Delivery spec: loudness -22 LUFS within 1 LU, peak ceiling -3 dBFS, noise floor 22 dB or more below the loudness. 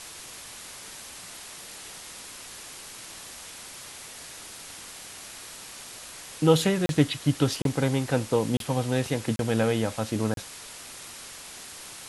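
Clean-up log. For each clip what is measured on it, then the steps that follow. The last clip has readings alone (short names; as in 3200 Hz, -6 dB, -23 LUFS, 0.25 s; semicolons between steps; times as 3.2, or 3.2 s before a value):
dropouts 5; longest dropout 32 ms; noise floor -43 dBFS; noise floor target -49 dBFS; loudness -27.0 LUFS; peak -8.0 dBFS; loudness target -22.0 LUFS
-> interpolate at 6.86/7.62/8.57/9.36/10.34, 32 ms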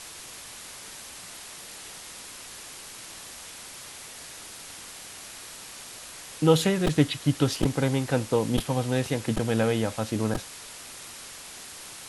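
dropouts 0; noise floor -43 dBFS; noise floor target -48 dBFS
-> denoiser 6 dB, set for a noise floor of -43 dBFS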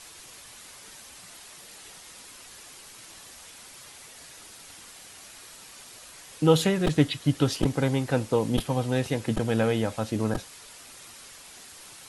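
noise floor -48 dBFS; loudness -26.0 LUFS; peak -8.0 dBFS; loudness target -22.0 LUFS
-> gain +4 dB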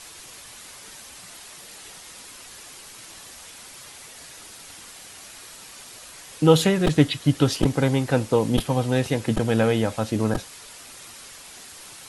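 loudness -22.0 LUFS; peak -4.0 dBFS; noise floor -44 dBFS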